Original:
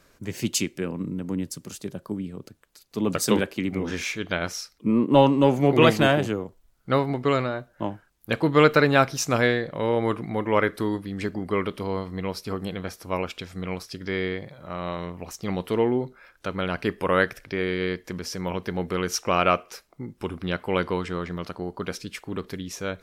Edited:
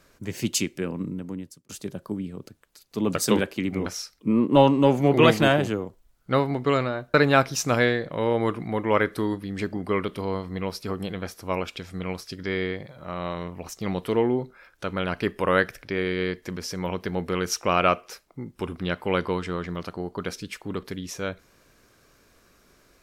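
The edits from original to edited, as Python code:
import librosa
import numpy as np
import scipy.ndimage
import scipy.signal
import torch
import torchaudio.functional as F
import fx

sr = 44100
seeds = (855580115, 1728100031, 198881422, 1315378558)

y = fx.edit(x, sr, fx.fade_out_span(start_s=1.03, length_s=0.66),
    fx.cut(start_s=3.86, length_s=0.59),
    fx.cut(start_s=7.73, length_s=1.03), tone=tone)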